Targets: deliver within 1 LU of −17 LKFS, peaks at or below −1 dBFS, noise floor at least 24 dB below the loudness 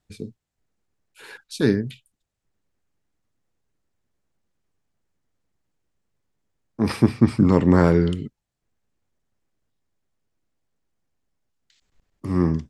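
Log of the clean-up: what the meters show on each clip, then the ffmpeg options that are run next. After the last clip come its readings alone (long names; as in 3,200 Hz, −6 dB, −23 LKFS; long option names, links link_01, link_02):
integrated loudness −20.0 LKFS; sample peak −2.0 dBFS; target loudness −17.0 LKFS
→ -af "volume=3dB,alimiter=limit=-1dB:level=0:latency=1"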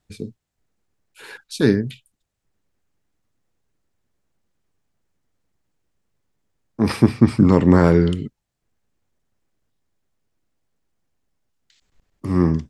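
integrated loudness −17.5 LKFS; sample peak −1.0 dBFS; background noise floor −79 dBFS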